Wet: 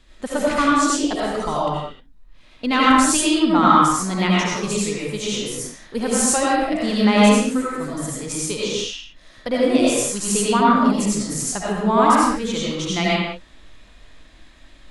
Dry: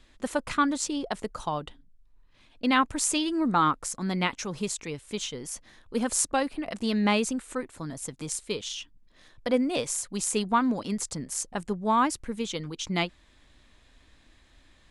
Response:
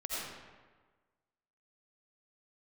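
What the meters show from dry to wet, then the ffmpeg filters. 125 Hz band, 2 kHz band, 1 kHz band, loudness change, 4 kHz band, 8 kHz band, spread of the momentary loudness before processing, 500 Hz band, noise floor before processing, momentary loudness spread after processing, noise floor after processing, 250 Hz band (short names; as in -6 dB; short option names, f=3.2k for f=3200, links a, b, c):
+10.0 dB, +9.0 dB, +10.0 dB, +9.5 dB, +9.0 dB, +8.0 dB, 12 LU, +10.5 dB, -60 dBFS, 13 LU, -48 dBFS, +10.0 dB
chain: -filter_complex "[0:a]acontrast=76[a];[1:a]atrim=start_sample=2205,afade=t=out:st=0.37:d=0.01,atrim=end_sample=16758[b];[a][b]afir=irnorm=-1:irlink=0"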